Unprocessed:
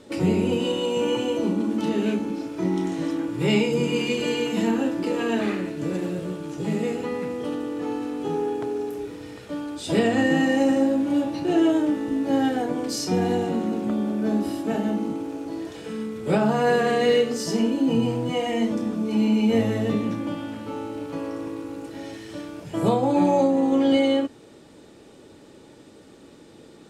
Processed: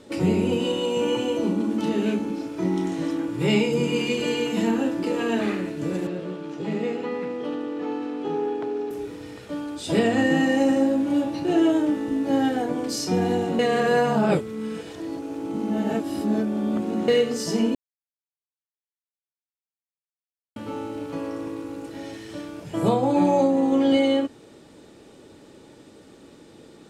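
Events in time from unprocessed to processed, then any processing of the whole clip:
6.07–8.91 three-band isolator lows -14 dB, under 170 Hz, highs -16 dB, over 5100 Hz
13.59–17.08 reverse
17.75–20.56 mute

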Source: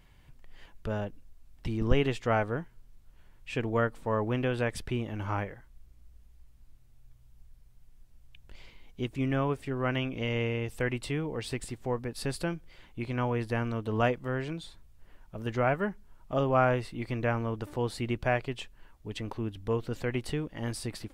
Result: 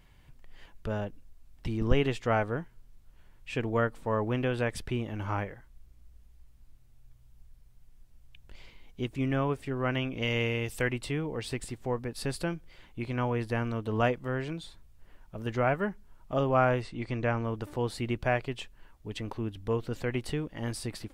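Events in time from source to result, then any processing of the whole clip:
10.22–10.88 high shelf 2200 Hz +8 dB
16.82–17.44 LPF 8400 Hz 24 dB/oct

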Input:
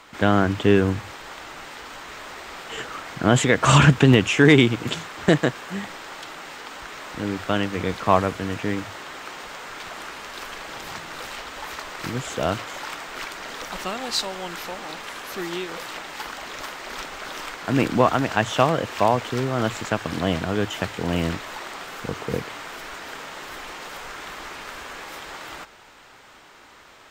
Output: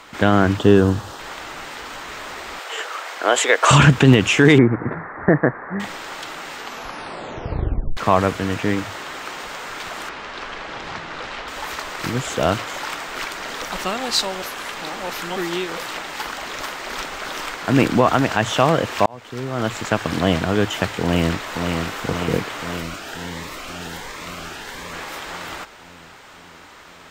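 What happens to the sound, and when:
0.57–1.19 bell 2200 Hz -14 dB 0.47 oct
2.59–3.71 HPF 440 Hz 24 dB/oct
4.58–5.8 elliptic low-pass 1900 Hz
6.57 tape stop 1.40 s
10.09–11.48 air absorption 130 m
14.42–15.36 reverse
19.06–20 fade in
21.02–21.7 echo throw 0.53 s, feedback 70%, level -5 dB
22.82–24.93 cascading phaser rising 1.4 Hz
whole clip: maximiser +6 dB; gain -1 dB

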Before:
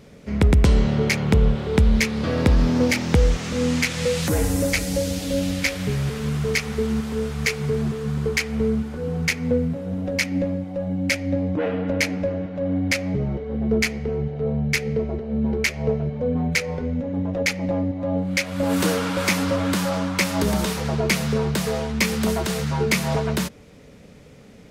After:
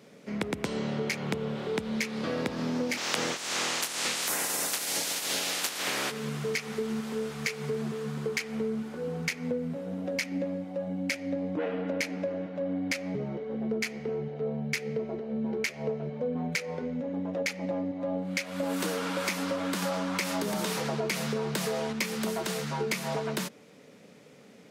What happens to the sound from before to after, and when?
2.96–6.1 spectral limiter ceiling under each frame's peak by 28 dB
19.82–21.93 fast leveller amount 50%
whole clip: Bessel high-pass 220 Hz, order 4; compressor, threshold -23 dBFS; gain -4 dB

